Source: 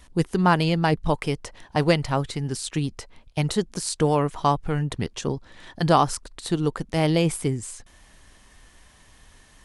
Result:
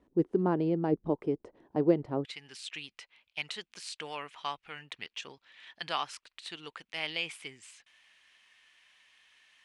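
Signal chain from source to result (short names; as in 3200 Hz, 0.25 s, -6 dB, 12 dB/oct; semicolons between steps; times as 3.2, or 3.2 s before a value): band-pass 350 Hz, Q 2.3, from 2.25 s 2600 Hz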